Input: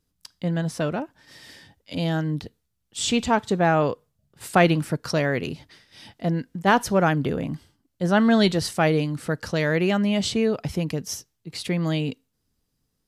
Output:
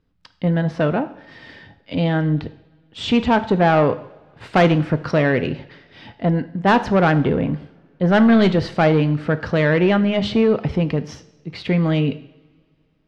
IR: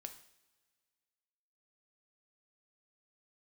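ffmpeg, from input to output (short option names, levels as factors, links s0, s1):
-filter_complex "[0:a]lowpass=2800,asoftclip=type=tanh:threshold=0.158,asplit=2[s0][s1];[1:a]atrim=start_sample=2205,asetrate=37926,aresample=44100,lowpass=5600[s2];[s1][s2]afir=irnorm=-1:irlink=0,volume=1.78[s3];[s0][s3]amix=inputs=2:normalize=0,volume=1.19"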